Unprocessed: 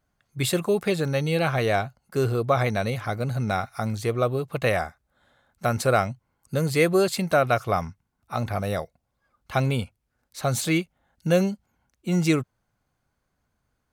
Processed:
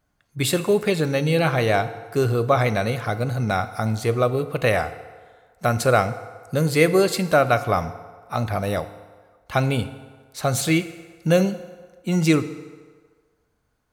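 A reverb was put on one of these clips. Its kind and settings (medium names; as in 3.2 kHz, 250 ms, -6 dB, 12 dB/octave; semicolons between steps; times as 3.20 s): FDN reverb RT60 1.6 s, low-frequency decay 0.7×, high-frequency decay 0.7×, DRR 11 dB; trim +3 dB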